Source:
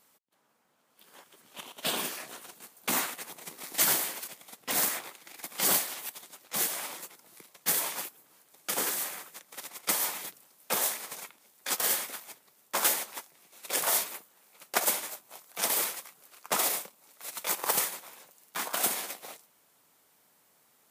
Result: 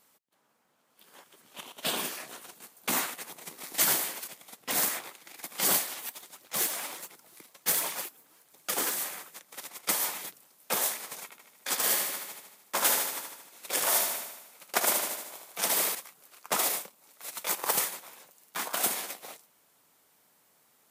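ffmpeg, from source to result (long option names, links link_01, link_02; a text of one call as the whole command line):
ffmpeg -i in.wav -filter_complex "[0:a]asplit=3[link_01][link_02][link_03];[link_01]afade=type=out:start_time=5.97:duration=0.02[link_04];[link_02]aphaser=in_gain=1:out_gain=1:delay=4.5:decay=0.31:speed=1.4:type=triangular,afade=type=in:start_time=5.97:duration=0.02,afade=type=out:start_time=8.91:duration=0.02[link_05];[link_03]afade=type=in:start_time=8.91:duration=0.02[link_06];[link_04][link_05][link_06]amix=inputs=3:normalize=0,asettb=1/sr,asplit=3[link_07][link_08][link_09];[link_07]atrim=end=11.244[link_10];[link_08]atrim=start=11.24:end=15.95,asetpts=PTS-STARTPTS,afade=type=in:duration=0.004:curve=qsin,afade=type=out:start_time=4.706:duration=0.004:curve=qsin,aecho=1:1:76|152|228|304|380|456|532|608:0.562|0.332|0.196|0.115|0.0681|0.0402|0.0237|0.014,atrim=end_sample=207711[link_11];[link_09]atrim=start=15.946[link_12];[link_10][link_11]acrossfade=duration=0.004:curve1=hsin:curve2=qsin[link_13];[link_13][link_12]acrossfade=duration=0.004:curve1=qsin:curve2=hsin" out.wav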